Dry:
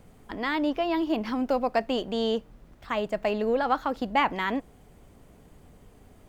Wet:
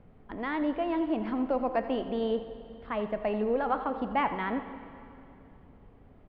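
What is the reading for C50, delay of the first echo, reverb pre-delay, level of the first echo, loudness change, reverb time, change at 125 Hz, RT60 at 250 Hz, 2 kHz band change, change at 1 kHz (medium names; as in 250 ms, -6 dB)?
9.0 dB, 85 ms, 23 ms, -14.5 dB, -3.0 dB, 2.8 s, -1.5 dB, 3.2 s, -6.0 dB, -3.5 dB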